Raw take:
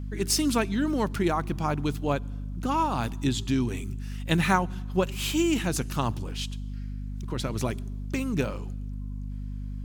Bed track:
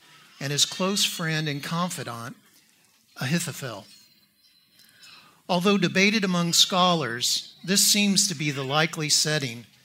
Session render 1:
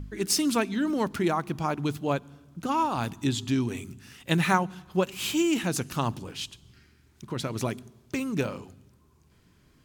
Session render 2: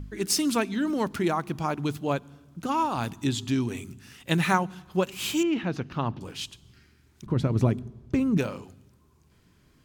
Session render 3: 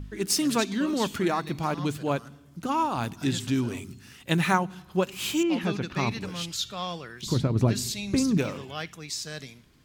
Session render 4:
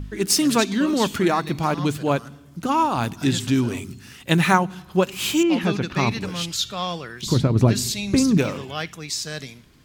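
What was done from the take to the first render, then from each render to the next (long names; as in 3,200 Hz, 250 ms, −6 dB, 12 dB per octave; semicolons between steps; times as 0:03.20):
hum removal 50 Hz, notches 5
0:05.43–0:06.21: high-frequency loss of the air 280 metres; 0:07.26–0:08.38: spectral tilt −3.5 dB per octave
mix in bed track −13 dB
level +6 dB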